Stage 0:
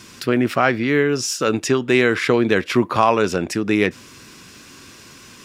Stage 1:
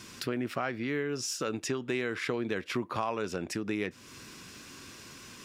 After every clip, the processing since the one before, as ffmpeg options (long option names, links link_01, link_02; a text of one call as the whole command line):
ffmpeg -i in.wav -af "acompressor=threshold=-28dB:ratio=2.5,volume=-5.5dB" out.wav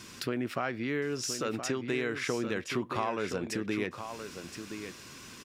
ffmpeg -i in.wav -af "aecho=1:1:1021:0.355" out.wav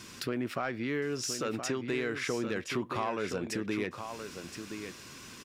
ffmpeg -i in.wav -af "asoftclip=type=tanh:threshold=-20dB" out.wav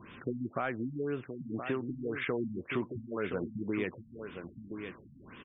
ffmpeg -i in.wav -af "afftfilt=real='re*lt(b*sr/1024,250*pow(3700/250,0.5+0.5*sin(2*PI*1.9*pts/sr)))':imag='im*lt(b*sr/1024,250*pow(3700/250,0.5+0.5*sin(2*PI*1.9*pts/sr)))':win_size=1024:overlap=0.75" out.wav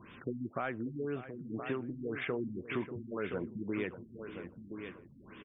ffmpeg -i in.wav -filter_complex "[0:a]asplit=2[link_01][link_02];[link_02]adelay=589,lowpass=frequency=2900:poles=1,volume=-13.5dB,asplit=2[link_03][link_04];[link_04]adelay=589,lowpass=frequency=2900:poles=1,volume=0.2[link_05];[link_01][link_03][link_05]amix=inputs=3:normalize=0,volume=-2.5dB" out.wav